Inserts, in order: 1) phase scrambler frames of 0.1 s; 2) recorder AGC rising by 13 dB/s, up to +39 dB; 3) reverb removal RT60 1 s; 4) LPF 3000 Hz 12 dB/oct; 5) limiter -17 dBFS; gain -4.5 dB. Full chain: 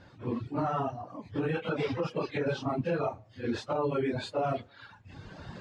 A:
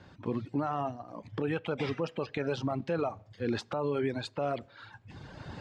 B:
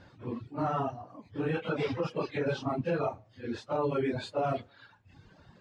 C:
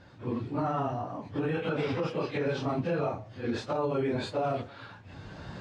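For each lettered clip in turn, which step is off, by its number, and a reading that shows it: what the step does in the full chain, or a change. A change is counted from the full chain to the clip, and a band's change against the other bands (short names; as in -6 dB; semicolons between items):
1, momentary loudness spread change -1 LU; 2, momentary loudness spread change -6 LU; 3, momentary loudness spread change -2 LU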